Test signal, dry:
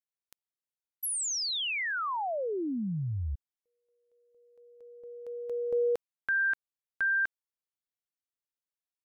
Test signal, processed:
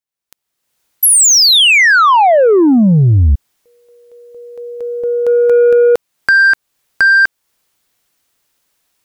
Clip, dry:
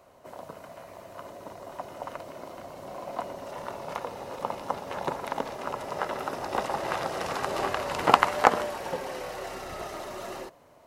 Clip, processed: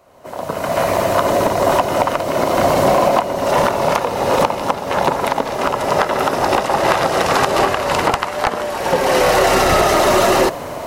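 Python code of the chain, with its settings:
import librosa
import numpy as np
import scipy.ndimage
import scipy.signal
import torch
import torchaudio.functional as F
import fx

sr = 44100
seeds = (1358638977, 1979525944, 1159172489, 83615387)

y = np.minimum(x, 2.0 * 10.0 ** (-7.5 / 20.0) - x)
y = fx.recorder_agc(y, sr, target_db=-6.5, rise_db_per_s=32.0, max_gain_db=26)
y = 10.0 ** (-8.0 / 20.0) * np.tanh(y / 10.0 ** (-8.0 / 20.0))
y = fx.quant_float(y, sr, bits=8)
y = y * librosa.db_to_amplitude(4.0)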